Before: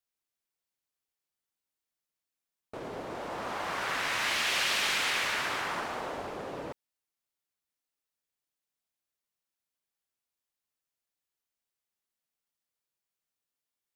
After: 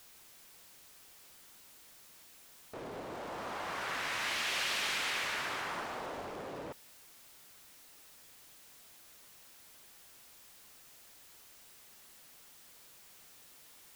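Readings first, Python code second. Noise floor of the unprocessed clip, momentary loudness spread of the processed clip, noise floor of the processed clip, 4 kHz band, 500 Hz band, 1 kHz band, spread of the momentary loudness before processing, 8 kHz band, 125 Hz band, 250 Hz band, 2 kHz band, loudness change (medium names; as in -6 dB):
under -85 dBFS, 22 LU, -58 dBFS, -5.5 dB, -4.5 dB, -5.0 dB, 15 LU, -4.5 dB, -4.5 dB, -4.5 dB, -5.0 dB, -5.5 dB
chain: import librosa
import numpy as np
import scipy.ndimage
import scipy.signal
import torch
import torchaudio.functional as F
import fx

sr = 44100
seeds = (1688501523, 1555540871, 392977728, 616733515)

y = x + 0.5 * 10.0 ** (-44.0 / 20.0) * np.sign(x)
y = y * librosa.db_to_amplitude(-6.0)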